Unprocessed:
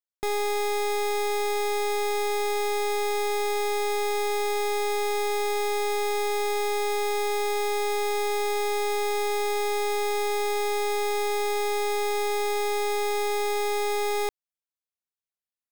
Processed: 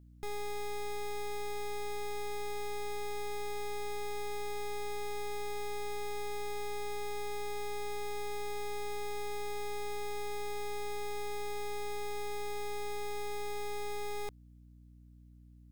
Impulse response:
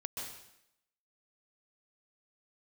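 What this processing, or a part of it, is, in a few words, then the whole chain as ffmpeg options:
valve amplifier with mains hum: -af "aeval=exprs='(tanh(282*val(0)+0.65)-tanh(0.65))/282':c=same,aeval=exprs='val(0)+0.000562*(sin(2*PI*60*n/s)+sin(2*PI*2*60*n/s)/2+sin(2*PI*3*60*n/s)/3+sin(2*PI*4*60*n/s)/4+sin(2*PI*5*60*n/s)/5)':c=same,volume=10dB"

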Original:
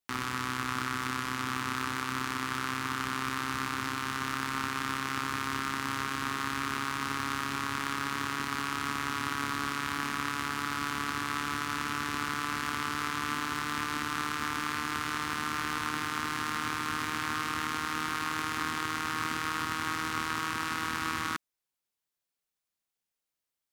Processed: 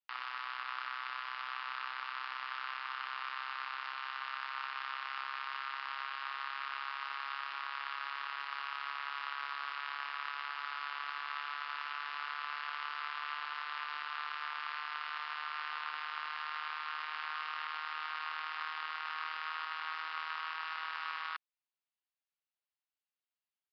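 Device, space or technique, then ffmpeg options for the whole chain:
musical greeting card: -af "highshelf=f=4.7k:g=-7,aresample=11025,aresample=44100,highpass=f=710:w=0.5412,highpass=f=710:w=1.3066,equalizer=f=2.8k:t=o:w=0.21:g=5,volume=-6dB"

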